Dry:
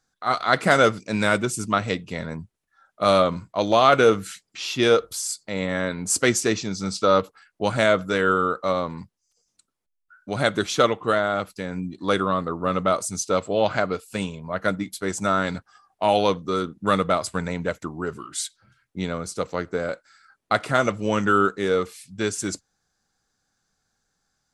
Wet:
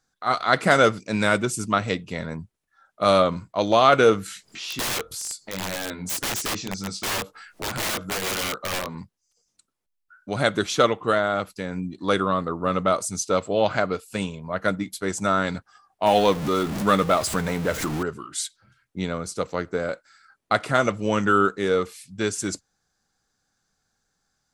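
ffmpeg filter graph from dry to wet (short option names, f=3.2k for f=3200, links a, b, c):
-filter_complex "[0:a]asettb=1/sr,asplit=3[a][b][c];[a]atrim=end=4.264[d];[b]atrim=start=4.26:end=8.95,asetpts=PTS-STARTPTS,afade=t=in:d=0.004:c=qsin,afade=t=out:st=4.686:d=0.004:c=qsin,acompressor=mode=upward:threshold=-27dB:ratio=2.5:attack=3.2:release=140:knee=2.83:detection=peak,flanger=delay=19:depth=3.1:speed=1.9,aeval=exprs='(mod(11.9*val(0)+1,2)-1)/11.9':c=same[e];[c]atrim=start=8.946[f];[d][e]acrossfade=d=0.004:c1=hsin:c2=qsin[g];[g][f]acrossfade=d=0.004:c1=qsin:c2=hsin,asettb=1/sr,asplit=3[h][i][j];[h]atrim=end=16.064[k];[i]atrim=start=16.06:end=18.03,asetpts=PTS-STARTPTS,afade=t=in:d=0.004:c=qsin,afade=t=out:st=1.966:d=0.004:c=qsin,aeval=exprs='val(0)+0.5*0.0376*sgn(val(0))':c=same,acompressor=mode=upward:threshold=-22dB:ratio=2.5:attack=3.2:release=140:knee=2.83:detection=peak,asplit=2[l][m];[m]adelay=14,volume=-12.5dB[n];[l][n]amix=inputs=2:normalize=0,atrim=end_sample=86877[o];[j]atrim=start=18.026[p];[k][o]acrossfade=d=0.004:c1=hsin:c2=qsin[q];[q][p]acrossfade=d=0.004:c1=qsin:c2=hsin"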